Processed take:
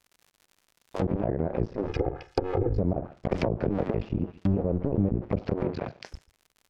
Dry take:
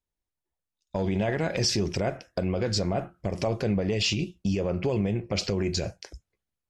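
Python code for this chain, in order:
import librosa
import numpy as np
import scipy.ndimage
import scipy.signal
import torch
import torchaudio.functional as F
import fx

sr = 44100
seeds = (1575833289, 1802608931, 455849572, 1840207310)

p1 = fx.cycle_switch(x, sr, every=2, mode='muted')
p2 = fx.dmg_crackle(p1, sr, seeds[0], per_s=110.0, level_db=-48.0)
p3 = fx.comb(p2, sr, ms=2.4, depth=0.99, at=(1.88, 2.79))
p4 = fx.bandpass_edges(p3, sr, low_hz=110.0, high_hz=4100.0, at=(5.64, 6.04), fade=0.02)
p5 = p4 + fx.echo_single(p4, sr, ms=140, db=-23.0, dry=0)
p6 = fx.env_lowpass_down(p5, sr, base_hz=550.0, full_db=-25.0)
p7 = fx.band_squash(p6, sr, depth_pct=100, at=(3.31, 3.88))
y = p7 * librosa.db_to_amplitude(3.5)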